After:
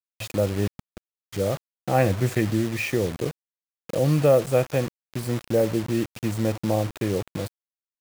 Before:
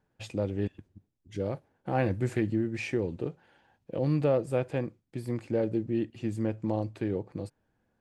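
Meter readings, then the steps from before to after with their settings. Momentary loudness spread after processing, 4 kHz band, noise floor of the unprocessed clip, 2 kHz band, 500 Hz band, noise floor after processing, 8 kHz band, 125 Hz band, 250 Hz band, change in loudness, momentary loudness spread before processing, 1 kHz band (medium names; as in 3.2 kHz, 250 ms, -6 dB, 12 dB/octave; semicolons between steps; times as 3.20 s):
12 LU, +12.5 dB, -77 dBFS, +8.0 dB, +7.5 dB, under -85 dBFS, no reading, +7.0 dB, +4.5 dB, +6.5 dB, 11 LU, +8.0 dB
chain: high-pass 66 Hz 6 dB/octave; comb 1.6 ms, depth 32%; bit crusher 7-bit; trim +7 dB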